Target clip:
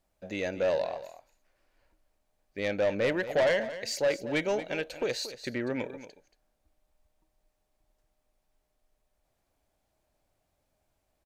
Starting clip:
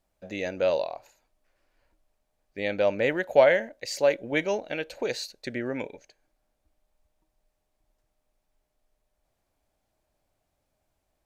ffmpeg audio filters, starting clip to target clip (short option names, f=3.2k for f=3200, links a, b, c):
-af "asoftclip=type=tanh:threshold=-21dB,aecho=1:1:230:0.211"